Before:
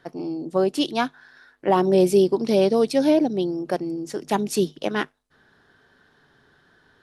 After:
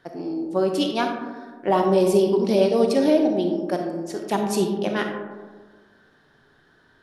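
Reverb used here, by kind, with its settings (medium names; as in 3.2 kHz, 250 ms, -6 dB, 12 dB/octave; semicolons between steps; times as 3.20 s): algorithmic reverb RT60 1.5 s, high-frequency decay 0.3×, pre-delay 5 ms, DRR 3 dB; trim -1.5 dB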